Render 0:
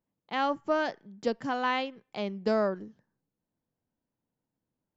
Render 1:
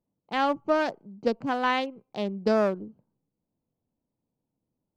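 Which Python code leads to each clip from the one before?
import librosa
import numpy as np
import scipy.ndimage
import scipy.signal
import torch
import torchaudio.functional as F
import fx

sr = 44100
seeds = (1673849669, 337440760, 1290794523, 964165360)

y = fx.wiener(x, sr, points=25)
y = y * librosa.db_to_amplitude(4.0)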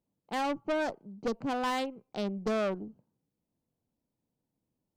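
y = fx.tube_stage(x, sr, drive_db=26.0, bias=0.4)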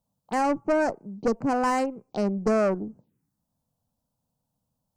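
y = fx.env_phaser(x, sr, low_hz=350.0, high_hz=3500.0, full_db=-39.0)
y = y * librosa.db_to_amplitude(8.0)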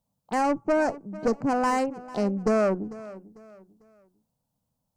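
y = fx.echo_feedback(x, sr, ms=447, feedback_pct=34, wet_db=-18)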